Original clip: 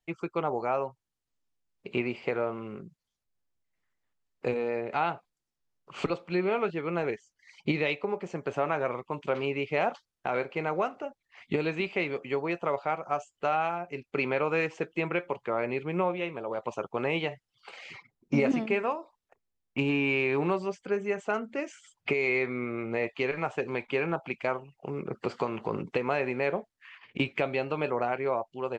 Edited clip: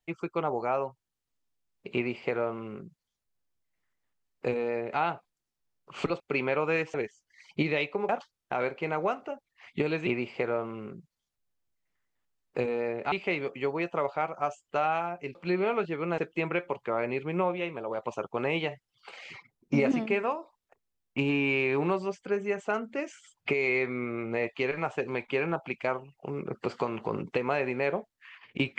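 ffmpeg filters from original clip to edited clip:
-filter_complex "[0:a]asplit=8[a][b][c][d][e][f][g][h];[a]atrim=end=6.202[i];[b]atrim=start=14.038:end=14.782[j];[c]atrim=start=7.028:end=8.182[k];[d]atrim=start=9.828:end=11.812[l];[e]atrim=start=1.948:end=5.002[m];[f]atrim=start=11.808:end=14.042[n];[g]atrim=start=6.198:end=7.032[o];[h]atrim=start=14.778[p];[i][j]acrossfade=d=0.004:c1=hsin:c2=hsin[q];[q][k]acrossfade=d=0.004:c1=hsin:c2=hsin[r];[r][l]acrossfade=d=0.004:c1=hsin:c2=hsin[s];[s][m]acrossfade=d=0.004:c1=hsin:c2=hsin[t];[t][n]acrossfade=d=0.004:c1=hsin:c2=hsin[u];[u][o]acrossfade=d=0.004:c1=hsin:c2=hsin[v];[v][p]acrossfade=d=0.004:c1=hsin:c2=hsin"

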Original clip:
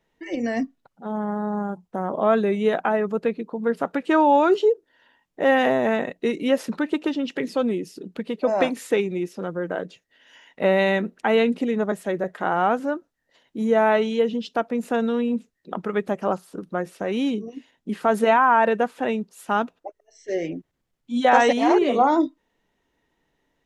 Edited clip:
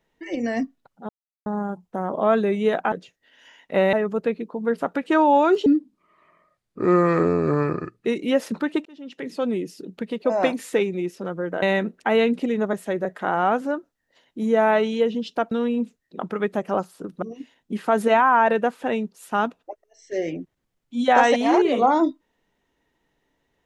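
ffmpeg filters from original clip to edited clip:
-filter_complex "[0:a]asplit=11[a][b][c][d][e][f][g][h][i][j][k];[a]atrim=end=1.09,asetpts=PTS-STARTPTS,afade=t=out:st=1.086:d=0.004:c=hsin[l];[b]atrim=start=1.09:end=1.46,asetpts=PTS-STARTPTS,volume=0[m];[c]atrim=start=1.46:end=2.922,asetpts=PTS-STARTPTS,afade=t=in:d=0.004:c=hsin[n];[d]atrim=start=9.798:end=10.812[o];[e]atrim=start=2.918:end=4.654[p];[f]atrim=start=4.65:end=6.23,asetpts=PTS-STARTPTS,asetrate=29106,aresample=44100[q];[g]atrim=start=6.226:end=7.03,asetpts=PTS-STARTPTS,afade=t=out:st=0.8:d=0.004:c=hsin[r];[h]atrim=start=7.03:end=9.802,asetpts=PTS-STARTPTS,afade=t=in:d=0.74[s];[i]atrim=start=10.808:end=14.702[t];[j]atrim=start=15.048:end=16.762[u];[k]atrim=start=17.388[v];[l][m][n]concat=n=3:v=0:a=1[w];[w][o]acrossfade=d=0.004:c1=hsin:c2=hsin[x];[x][p]acrossfade=d=0.004:c1=hsin:c2=hsin[y];[y][q]acrossfade=d=0.004:c1=hsin:c2=hsin[z];[r][s]concat=n=2:v=0:a=1[aa];[z][aa]acrossfade=d=0.004:c1=hsin:c2=hsin[ab];[ab][t]acrossfade=d=0.004:c1=hsin:c2=hsin[ac];[ac][u]acrossfade=d=0.004:c1=hsin:c2=hsin[ad];[ad][v]acrossfade=d=0.004:c1=hsin:c2=hsin"

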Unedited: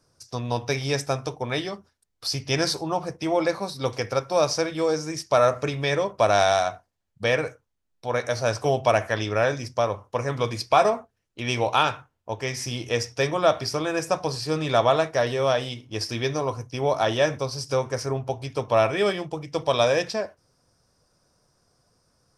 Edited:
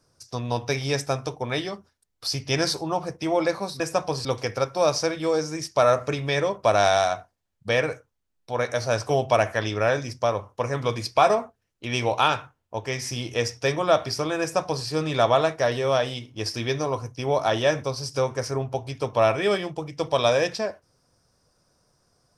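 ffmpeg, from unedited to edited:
-filter_complex "[0:a]asplit=3[a][b][c];[a]atrim=end=3.802[d];[b]atrim=start=13.958:end=14.412[e];[c]atrim=start=3.798[f];[d][e]acrossfade=d=0.004:c1=hsin:c2=hsin[g];[g][f]acrossfade=d=0.004:c1=hsin:c2=hsin"

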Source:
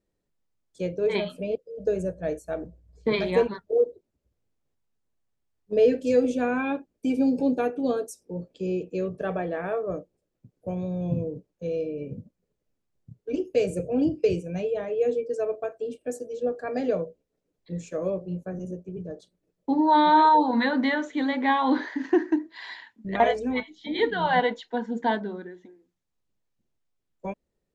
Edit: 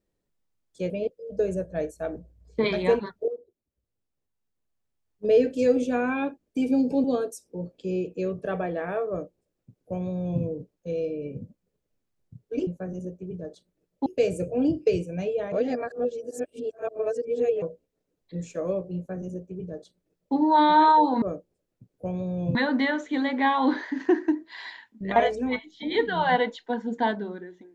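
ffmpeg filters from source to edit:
-filter_complex "[0:a]asplit=10[a][b][c][d][e][f][g][h][i][j];[a]atrim=end=0.902[k];[b]atrim=start=1.378:end=3.76,asetpts=PTS-STARTPTS,afade=t=out:st=2.378:d=0.004:c=hsin:silence=0.177828[l];[c]atrim=start=3.76:end=7.522,asetpts=PTS-STARTPTS,afade=t=in:d=1.99:silence=0.177828[m];[d]atrim=start=7.798:end=13.432[n];[e]atrim=start=18.328:end=19.722[o];[f]atrim=start=13.428:end=14.892[p];[g]atrim=start=14.888:end=16.992,asetpts=PTS-STARTPTS,areverse[q];[h]atrim=start=16.988:end=20.592[r];[i]atrim=start=9.848:end=11.182[s];[j]atrim=start=20.588[t];[l][m]concat=n=2:v=0:a=1[u];[k][u]acrossfade=d=0.004:c1=hsin:c2=hsin[v];[v][n]acrossfade=d=0.004:c1=hsin:c2=hsin[w];[w][o]acrossfade=d=0.004:c1=hsin:c2=hsin[x];[x][p]acrossfade=d=0.004:c1=hsin:c2=hsin[y];[y][q]acrossfade=d=0.004:c1=hsin:c2=hsin[z];[z][r]acrossfade=d=0.004:c1=hsin:c2=hsin[aa];[aa][s]acrossfade=d=0.004:c1=hsin:c2=hsin[ab];[ab][t]acrossfade=d=0.004:c1=hsin:c2=hsin"

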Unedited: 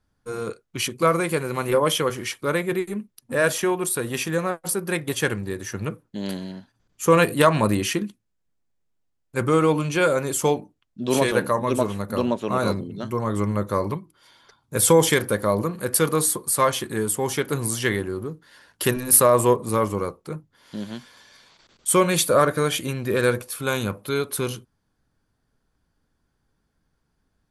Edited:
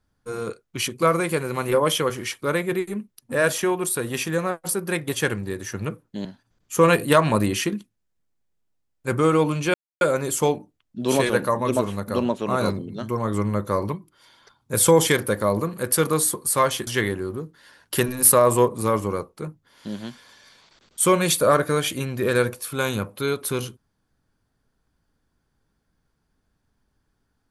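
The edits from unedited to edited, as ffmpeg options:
-filter_complex "[0:a]asplit=4[a][b][c][d];[a]atrim=end=6.252[e];[b]atrim=start=6.538:end=10.03,asetpts=PTS-STARTPTS,afade=t=out:st=3.488:d=0.004:c=hsin,apad=pad_dur=0.27[f];[c]atrim=start=10.03:end=16.892,asetpts=PTS-STARTPTS,afade=t=in:d=0.004:c=hsin[g];[d]atrim=start=17.748[h];[f][g]concat=n=2:v=0:a=1[i];[e][i]acrossfade=d=0.004:c1=hsin:c2=hsin[j];[j][h]acrossfade=d=0.004:c1=hsin:c2=hsin"

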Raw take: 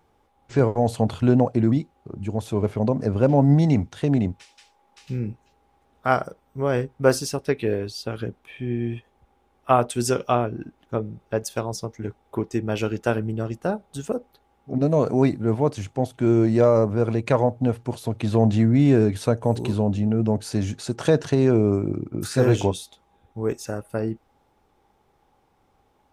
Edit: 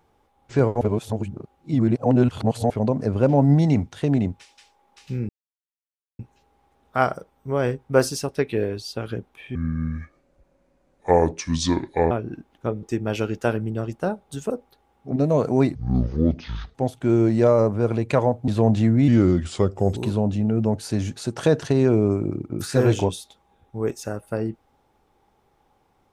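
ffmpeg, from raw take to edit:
-filter_complex "[0:a]asplit=12[a][b][c][d][e][f][g][h][i][j][k][l];[a]atrim=end=0.812[m];[b]atrim=start=0.808:end=2.702,asetpts=PTS-STARTPTS,areverse[n];[c]atrim=start=2.698:end=5.29,asetpts=PTS-STARTPTS,afade=t=out:st=2.588:d=0.004:c=hsin,apad=pad_dur=0.9[o];[d]atrim=start=5.29:end=8.654,asetpts=PTS-STARTPTS,afade=t=in:d=0.004:c=hsin[p];[e]atrim=start=8.65:end=10.39,asetpts=PTS-STARTPTS,asetrate=29988,aresample=44100,atrim=end_sample=112844,asetpts=PTS-STARTPTS[q];[f]atrim=start=10.386:end=11.112[r];[g]atrim=start=12.448:end=15.374[s];[h]atrim=start=15.37:end=15.92,asetpts=PTS-STARTPTS,asetrate=24255,aresample=44100[t];[i]atrim=start=15.916:end=17.652[u];[j]atrim=start=18.238:end=18.844[v];[k]atrim=start=18.84:end=19.58,asetpts=PTS-STARTPTS,asetrate=37044,aresample=44100[w];[l]atrim=start=19.576[x];[m][n]acrossfade=d=0.004:c1=hsin:c2=hsin[y];[o][p]concat=n=2:v=0:a=1[z];[y][z]acrossfade=d=0.004:c1=hsin:c2=hsin[aa];[aa][q]acrossfade=d=0.004:c1=hsin:c2=hsin[ab];[ab][r]acrossfade=d=0.004:c1=hsin:c2=hsin[ac];[ac][s]acrossfade=d=0.004:c1=hsin:c2=hsin[ad];[ad][t]acrossfade=d=0.004:c1=hsin:c2=hsin[ae];[ae][u]acrossfade=d=0.004:c1=hsin:c2=hsin[af];[af][v]acrossfade=d=0.004:c1=hsin:c2=hsin[ag];[ag][w]acrossfade=d=0.004:c1=hsin:c2=hsin[ah];[ah][x]acrossfade=d=0.004:c1=hsin:c2=hsin"

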